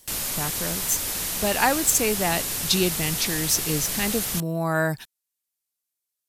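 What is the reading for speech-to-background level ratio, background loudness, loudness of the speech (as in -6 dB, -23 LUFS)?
1.0 dB, -26.0 LUFS, -25.0 LUFS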